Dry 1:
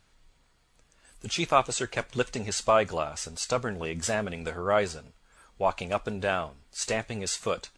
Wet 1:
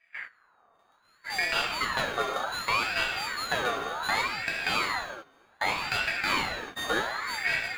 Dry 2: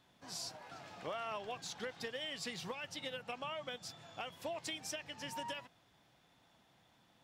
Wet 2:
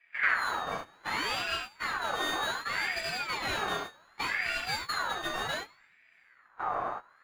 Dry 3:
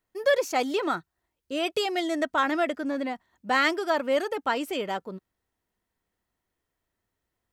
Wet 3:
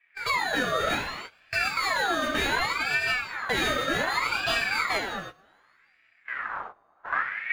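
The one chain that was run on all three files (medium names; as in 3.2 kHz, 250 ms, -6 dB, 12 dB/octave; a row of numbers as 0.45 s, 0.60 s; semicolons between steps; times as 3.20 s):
sorted samples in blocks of 16 samples; wind noise 270 Hz -43 dBFS; bass shelf 88 Hz -10 dB; band-stop 940 Hz, Q 21; dynamic bell 150 Hz, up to +5 dB, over -53 dBFS, Q 3; low-pass 1.8 kHz 6 dB/octave; level held to a coarse grid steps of 16 dB; two-slope reverb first 0.69 s, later 3.3 s, from -26 dB, DRR -5.5 dB; compression 2.5:1, threshold -37 dBFS; gate -47 dBFS, range -15 dB; ring modulator with a swept carrier 1.5 kHz, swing 40%, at 0.66 Hz; peak normalisation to -12 dBFS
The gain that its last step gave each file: +11.0 dB, +13.0 dB, +12.0 dB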